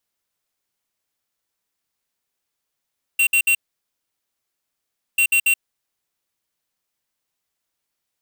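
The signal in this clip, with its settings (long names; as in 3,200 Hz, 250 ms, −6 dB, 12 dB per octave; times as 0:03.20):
beeps in groups square 2,740 Hz, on 0.08 s, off 0.06 s, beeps 3, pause 1.63 s, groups 2, −16 dBFS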